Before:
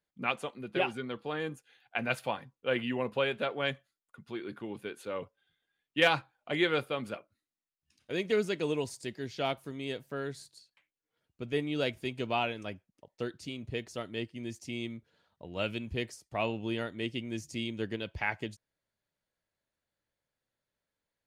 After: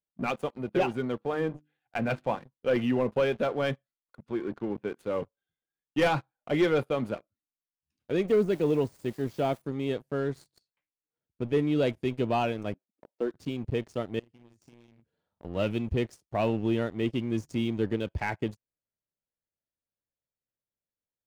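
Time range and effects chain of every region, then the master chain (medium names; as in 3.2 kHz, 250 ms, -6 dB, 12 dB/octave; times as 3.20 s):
1.18–2.38 s: low-pass 3.1 kHz + hum notches 50/100/150/200/250/300/350 Hz
4.28–4.99 s: band-pass 100–2600 Hz + upward compressor, threshold -47 dBFS
8.28–9.62 s: zero-crossing glitches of -32 dBFS + de-esser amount 70% + treble shelf 6.5 kHz -8.5 dB
12.74–13.31 s: high-pass 250 Hz 24 dB/octave + treble shelf 2.3 kHz -12 dB
14.19–15.45 s: doubling 42 ms -4 dB + compression 10:1, threshold -50 dBFS
whole clip: waveshaping leveller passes 3; tilt shelf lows +6 dB, about 1.2 kHz; trim -8.5 dB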